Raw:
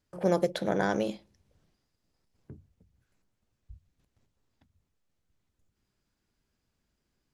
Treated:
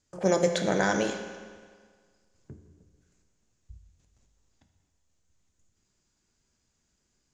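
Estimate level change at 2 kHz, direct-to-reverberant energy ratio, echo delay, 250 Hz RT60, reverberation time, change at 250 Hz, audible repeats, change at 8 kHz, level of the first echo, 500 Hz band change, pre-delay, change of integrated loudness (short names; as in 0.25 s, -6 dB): +6.0 dB, 5.0 dB, none, 1.7 s, 1.7 s, +1.5 dB, none, +13.0 dB, none, +2.5 dB, 8 ms, +2.5 dB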